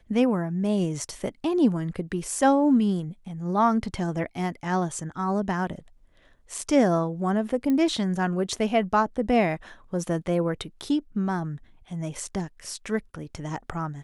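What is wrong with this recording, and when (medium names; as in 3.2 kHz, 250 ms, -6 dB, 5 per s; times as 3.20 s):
7.70 s: pop -16 dBFS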